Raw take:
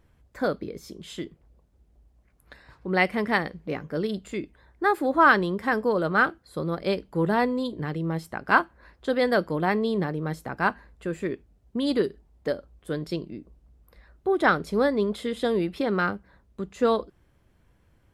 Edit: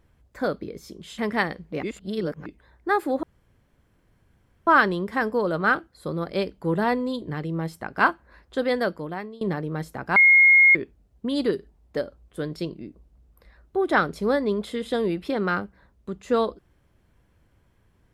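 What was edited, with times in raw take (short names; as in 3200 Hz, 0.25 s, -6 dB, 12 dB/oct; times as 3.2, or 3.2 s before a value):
1.18–3.13 cut
3.78–4.41 reverse
5.18 insert room tone 1.44 s
9.16–9.92 fade out, to -23 dB
10.67–11.26 bleep 2150 Hz -11 dBFS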